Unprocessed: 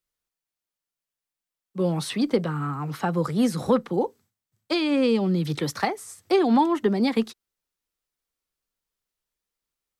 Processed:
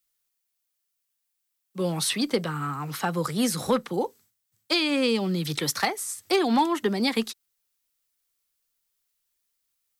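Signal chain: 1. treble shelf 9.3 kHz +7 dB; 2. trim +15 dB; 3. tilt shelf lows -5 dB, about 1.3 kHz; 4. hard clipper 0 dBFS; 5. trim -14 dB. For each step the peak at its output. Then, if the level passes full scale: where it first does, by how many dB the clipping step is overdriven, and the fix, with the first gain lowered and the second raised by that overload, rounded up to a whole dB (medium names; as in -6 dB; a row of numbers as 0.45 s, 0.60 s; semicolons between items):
-9.5 dBFS, +5.5 dBFS, +4.0 dBFS, 0.0 dBFS, -14.0 dBFS; step 2, 4.0 dB; step 2 +11 dB, step 5 -10 dB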